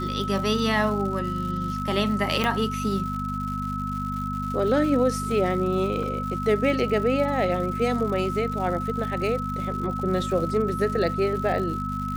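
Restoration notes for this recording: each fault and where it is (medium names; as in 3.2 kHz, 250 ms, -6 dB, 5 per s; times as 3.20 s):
crackle 190 per s -33 dBFS
hum 50 Hz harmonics 5 -31 dBFS
whine 1.3 kHz -30 dBFS
2.44 s: pop -10 dBFS
6.03 s: dropout 2.1 ms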